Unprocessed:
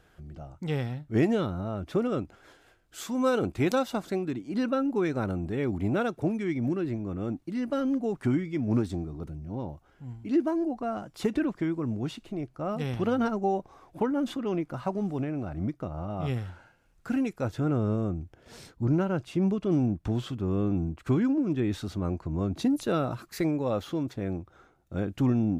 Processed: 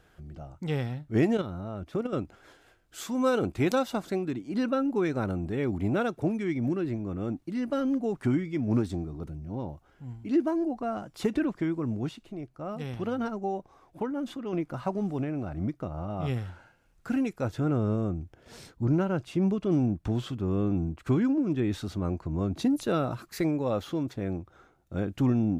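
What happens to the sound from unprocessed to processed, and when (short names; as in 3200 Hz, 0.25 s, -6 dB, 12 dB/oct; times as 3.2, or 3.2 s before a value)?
1.37–2.13 level quantiser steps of 9 dB
12.09–14.53 gain -4.5 dB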